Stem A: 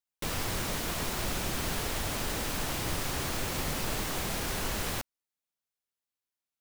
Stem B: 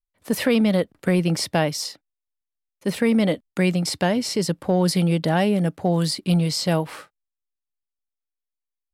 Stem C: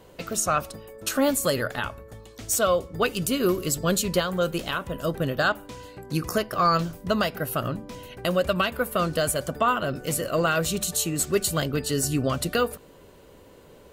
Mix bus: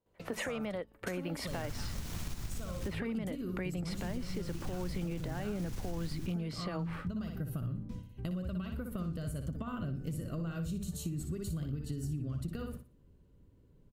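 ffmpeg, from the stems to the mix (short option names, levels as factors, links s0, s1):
-filter_complex "[0:a]equalizer=f=6100:t=o:w=0.77:g=4,aeval=exprs='clip(val(0),-1,0.0178)':c=same,adelay=1250,volume=0.422,asplit=3[s0][s1][s2];[s0]atrim=end=2.88,asetpts=PTS-STARTPTS,afade=t=out:st=2.876:d=0.004:c=hsin[s3];[s1]atrim=start=2.88:end=3.9,asetpts=PTS-STARTPTS,volume=0[s4];[s2]atrim=start=3.9,asetpts=PTS-STARTPTS,afade=t=in:d=0.004:c=hsin[s5];[s3][s4][s5]concat=n=3:v=0:a=1,asplit=2[s6][s7];[s7]volume=0.335[s8];[1:a]acrossover=split=320 2800:gain=0.0891 1 0.126[s9][s10][s11];[s9][s10][s11]amix=inputs=3:normalize=0,acompressor=threshold=0.0501:ratio=6,alimiter=limit=0.0631:level=0:latency=1,volume=1.12[s12];[2:a]tiltshelf=f=970:g=3.5,volume=0.2,asplit=2[s13][s14];[s14]volume=0.282[s15];[s6][s13]amix=inputs=2:normalize=0,agate=range=0.0794:threshold=0.00282:ratio=16:detection=peak,acompressor=threshold=0.0141:ratio=6,volume=1[s16];[s8][s15]amix=inputs=2:normalize=0,aecho=0:1:60|120|180|240:1|0.27|0.0729|0.0197[s17];[s12][s16][s17]amix=inputs=3:normalize=0,asubboost=boost=7.5:cutoff=210,acompressor=threshold=0.02:ratio=6"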